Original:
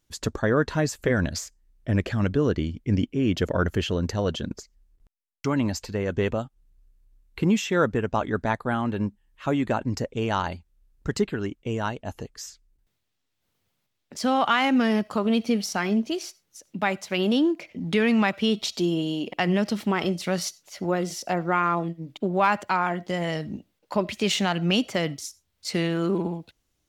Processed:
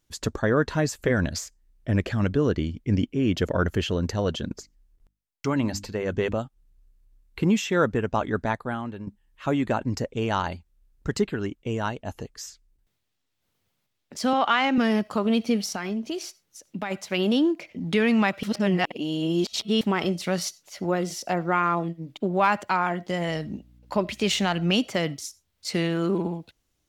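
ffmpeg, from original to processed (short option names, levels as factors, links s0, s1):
-filter_complex "[0:a]asettb=1/sr,asplit=3[s0][s1][s2];[s0]atrim=end=4.534[s3];[s1]atrim=start=4.53:end=6.34,asetpts=PTS-STARTPTS,afade=t=in:d=0.004:c=qsin,afade=t=out:st=1.806:d=0.004:c=qsin,bandreject=f=50:t=h:w=6,bandreject=f=100:t=h:w=6,bandreject=f=150:t=h:w=6,bandreject=f=200:t=h:w=6,bandreject=f=250:t=h:w=6,bandreject=f=300:t=h:w=6[s4];[s2]atrim=start=6.336[s5];[s3][s4]acrossfade=d=0.004:c1=hsin:c2=qsin[s6];[s6][s5]acrossfade=d=0.004:c1=qsin:c2=hsin,asettb=1/sr,asplit=3[s7][s8][s9];[s7]atrim=end=14.334[s10];[s8]atrim=start=14.33:end=14.78,asetpts=PTS-STARTPTS,afade=t=in:d=0.004:c=qsin,afade=t=out:st=0.446:d=0.004:c=qsin,highpass=240,lowpass=6100[s11];[s9]atrim=start=14.776[s12];[s10][s11]acrossfade=d=0.004:c1=hsin:c2=qsin[s13];[s13][s12]acrossfade=d=0.004:c1=qsin:c2=hsin,asplit=3[s14][s15][s16];[s14]afade=t=out:st=15.72:d=0.02[s17];[s15]acompressor=threshold=0.0562:ratio=6:attack=3.2:release=140:knee=1:detection=peak,afade=t=in:st=15.72:d=0.02,afade=t=out:st=16.9:d=0.02[s18];[s16]afade=t=in:st=16.9:d=0.02[s19];[s17][s18][s19]amix=inputs=3:normalize=0,asettb=1/sr,asplit=3[s20][s21][s22];[s20]atrim=end=23.284[s23];[s21]atrim=start=23.28:end=24.68,asetpts=PTS-STARTPTS,afade=t=in:d=0.004:c=qsin,afade=t=out:st=1.396:d=0.004:c=qsin,aeval=exprs='val(0)+0.00224*(sin(2*PI*60*n/s)+sin(2*PI*2*60*n/s)/2+sin(2*PI*3*60*n/s)/3+sin(2*PI*4*60*n/s)/4+sin(2*PI*5*60*n/s)/5)':c=same[s24];[s22]atrim=start=24.676[s25];[s23][s24]acrossfade=d=0.004:c1=hsin:c2=qsin[s26];[s26][s25]acrossfade=d=0.004:c1=qsin:c2=hsin,asplit=4[s27][s28][s29][s30];[s27]atrim=end=9.07,asetpts=PTS-STARTPTS,afade=t=out:st=8.39:d=0.68:silence=0.223872[s31];[s28]atrim=start=9.07:end=18.432,asetpts=PTS-STARTPTS,afade=t=in:d=0.004:c=hsin:silence=0.223872[s32];[s29]atrim=start=18.428:end=19.812,asetpts=PTS-STARTPTS,areverse[s33];[s30]atrim=start=19.808[s34];[s31][s32]concat=n=2:v=0:a=1[s35];[s35][s33]acrossfade=d=0.004:c1=hsin:c2=hsin[s36];[s36][s34]acrossfade=d=0.004:c1=hsin:c2=hsin"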